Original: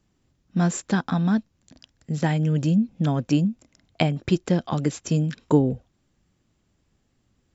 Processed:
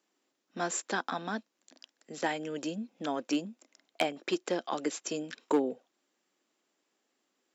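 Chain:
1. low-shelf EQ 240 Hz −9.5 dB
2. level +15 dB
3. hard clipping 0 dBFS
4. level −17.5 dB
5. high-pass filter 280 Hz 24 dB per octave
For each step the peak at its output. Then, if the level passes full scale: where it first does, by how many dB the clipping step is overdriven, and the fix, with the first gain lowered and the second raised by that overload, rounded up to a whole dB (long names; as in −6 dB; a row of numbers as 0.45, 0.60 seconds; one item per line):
−6.0, +9.0, 0.0, −17.5, −13.0 dBFS
step 2, 9.0 dB
step 2 +6 dB, step 4 −8.5 dB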